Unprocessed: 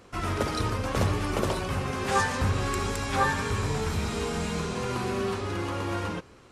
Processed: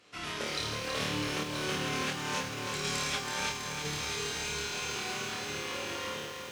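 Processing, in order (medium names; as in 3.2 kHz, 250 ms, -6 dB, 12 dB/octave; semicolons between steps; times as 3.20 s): feedback comb 150 Hz, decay 0.87 s, harmonics all, mix 70%; flutter echo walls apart 4.6 m, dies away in 0.76 s; 1.43–3.85 s: compressor with a negative ratio -34 dBFS, ratio -0.5; frequency weighting D; bit-crushed delay 326 ms, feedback 80%, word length 8-bit, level -6 dB; trim -3 dB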